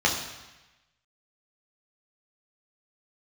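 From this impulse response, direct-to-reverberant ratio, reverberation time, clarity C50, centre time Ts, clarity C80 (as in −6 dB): −2.0 dB, 1.1 s, 6.0 dB, 36 ms, 8.0 dB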